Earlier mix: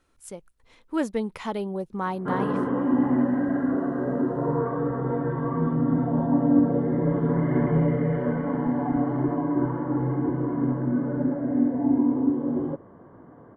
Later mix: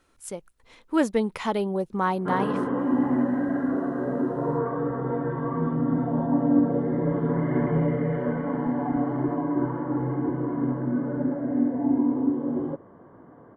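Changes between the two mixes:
speech +4.5 dB; master: add low shelf 160 Hz -4.5 dB

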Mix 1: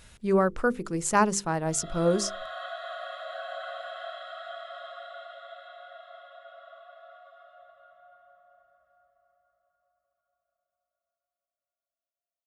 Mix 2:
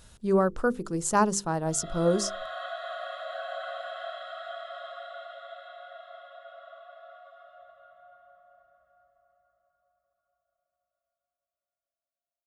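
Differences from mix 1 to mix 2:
speech: add bell 2200 Hz -9.5 dB 0.72 oct; background: add low shelf 480 Hz +4.5 dB

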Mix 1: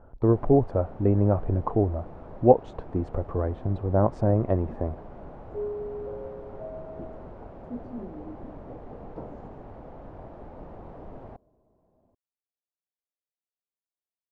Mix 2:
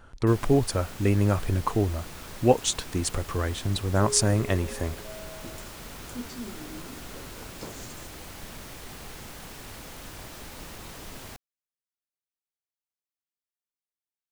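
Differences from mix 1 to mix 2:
second sound: entry -1.55 s; master: remove synth low-pass 700 Hz, resonance Q 1.7

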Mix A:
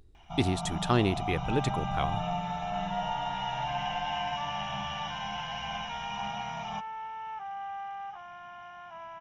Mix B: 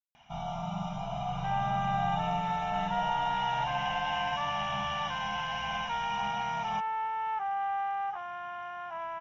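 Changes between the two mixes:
speech: muted; second sound +6.5 dB

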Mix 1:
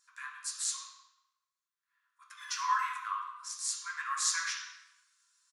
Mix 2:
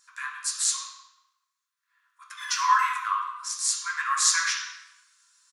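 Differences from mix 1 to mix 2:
speech +9.0 dB; background +11.0 dB

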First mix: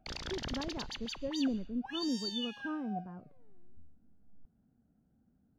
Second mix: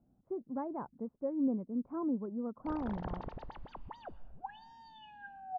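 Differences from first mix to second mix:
background: entry +2.60 s; master: add synth low-pass 920 Hz, resonance Q 2

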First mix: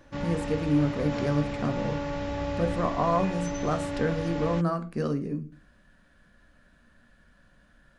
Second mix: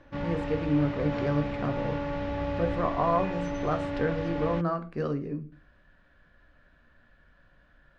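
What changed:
speech: add bell 210 Hz -8.5 dB 0.53 oct; master: add LPF 3300 Hz 12 dB/oct

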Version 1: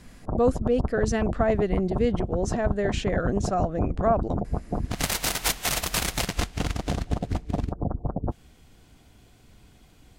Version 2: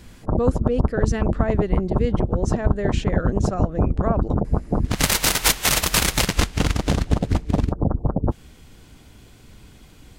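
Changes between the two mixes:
background +7.5 dB; master: add bell 710 Hz -6 dB 0.23 oct

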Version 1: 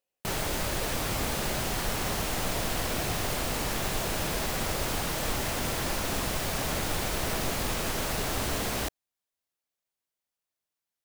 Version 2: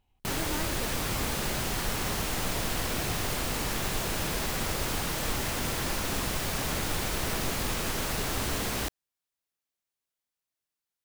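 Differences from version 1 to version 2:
speech: remove vowel filter e; master: add bell 640 Hz -3.5 dB 0.72 oct

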